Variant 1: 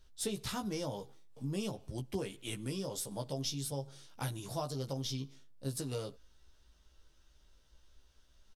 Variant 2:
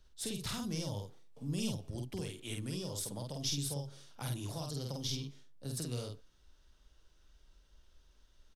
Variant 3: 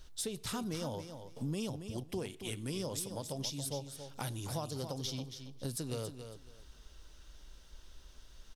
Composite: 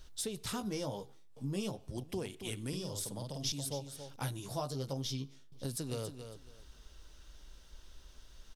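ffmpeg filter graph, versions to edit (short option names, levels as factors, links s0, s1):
-filter_complex "[0:a]asplit=2[s0][s1];[2:a]asplit=4[s2][s3][s4][s5];[s2]atrim=end=0.612[s6];[s0]atrim=start=0.608:end=1.972[s7];[s3]atrim=start=1.968:end=2.732[s8];[1:a]atrim=start=2.728:end=3.522[s9];[s4]atrim=start=3.518:end=4.162[s10];[s1]atrim=start=4.158:end=5.522[s11];[s5]atrim=start=5.518[s12];[s6][s7]acrossfade=d=0.004:c1=hsin:c2=hsin[s13];[s13][s8]acrossfade=d=0.004:c1=hsin:c2=hsin[s14];[s14][s9]acrossfade=d=0.004:c1=hsin:c2=hsin[s15];[s15][s10]acrossfade=d=0.004:c1=hsin:c2=hsin[s16];[s16][s11]acrossfade=d=0.004:c1=hsin:c2=hsin[s17];[s17][s12]acrossfade=d=0.004:c1=hsin:c2=hsin"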